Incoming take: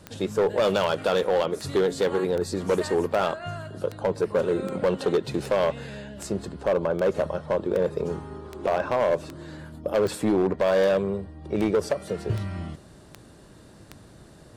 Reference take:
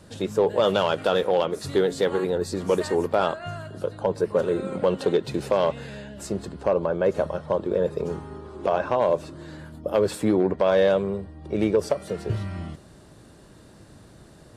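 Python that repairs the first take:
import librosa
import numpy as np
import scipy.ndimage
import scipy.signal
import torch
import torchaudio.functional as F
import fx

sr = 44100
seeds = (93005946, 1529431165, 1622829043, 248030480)

y = fx.fix_declip(x, sr, threshold_db=-16.5)
y = fx.fix_declick_ar(y, sr, threshold=10.0)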